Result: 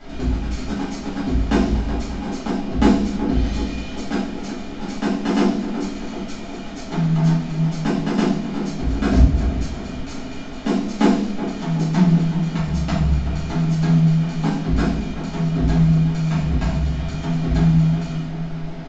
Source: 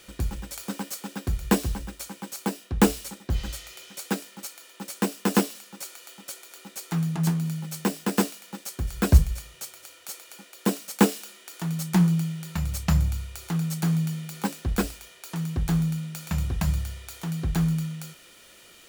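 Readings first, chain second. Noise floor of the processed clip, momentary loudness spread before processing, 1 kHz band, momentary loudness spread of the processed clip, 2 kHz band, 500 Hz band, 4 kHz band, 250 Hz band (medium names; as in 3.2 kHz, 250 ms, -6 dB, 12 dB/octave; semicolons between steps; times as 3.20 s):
-30 dBFS, 16 LU, +6.0 dB, 12 LU, +4.5 dB, +6.0 dB, +3.5 dB, +8.5 dB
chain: gate with hold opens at -39 dBFS; treble shelf 5.5 kHz +11.5 dB; in parallel at +3 dB: compression, threshold -31 dBFS, peak gain reduction 20.5 dB; on the sum: added noise pink -39 dBFS; short-mantissa float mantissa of 2-bit; distance through air 140 m; small resonant body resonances 250/670 Hz, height 10 dB, ringing for 35 ms; on a send: tape echo 375 ms, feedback 79%, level -8 dB, low-pass 1.3 kHz; on the sum: simulated room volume 76 m³, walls mixed, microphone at 2.4 m; resampled via 16 kHz; trim -10.5 dB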